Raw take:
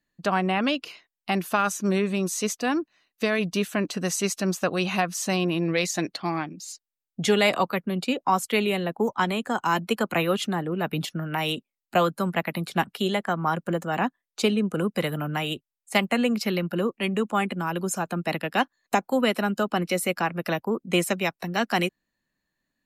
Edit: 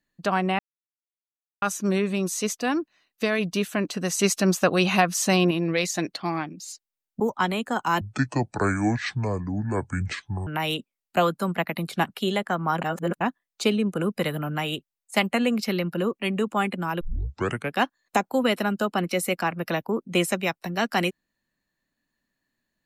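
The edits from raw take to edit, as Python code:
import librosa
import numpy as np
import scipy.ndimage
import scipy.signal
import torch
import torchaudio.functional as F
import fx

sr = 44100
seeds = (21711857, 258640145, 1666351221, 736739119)

y = fx.edit(x, sr, fx.silence(start_s=0.59, length_s=1.03),
    fx.clip_gain(start_s=4.19, length_s=1.32, db=4.5),
    fx.cut(start_s=7.2, length_s=1.79),
    fx.speed_span(start_s=9.8, length_s=1.45, speed=0.59),
    fx.reverse_span(start_s=13.6, length_s=0.39),
    fx.tape_start(start_s=17.79, length_s=0.74), tone=tone)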